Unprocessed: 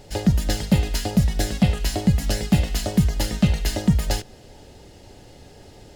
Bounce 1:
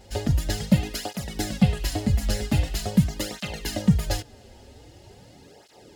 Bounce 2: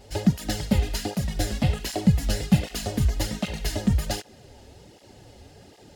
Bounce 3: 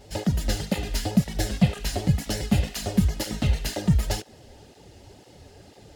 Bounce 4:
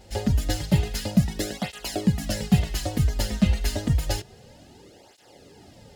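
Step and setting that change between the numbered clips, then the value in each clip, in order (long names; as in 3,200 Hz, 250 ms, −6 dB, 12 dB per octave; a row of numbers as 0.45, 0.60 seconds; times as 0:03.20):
through-zero flanger with one copy inverted, nulls at: 0.44, 1.3, 2, 0.29 Hertz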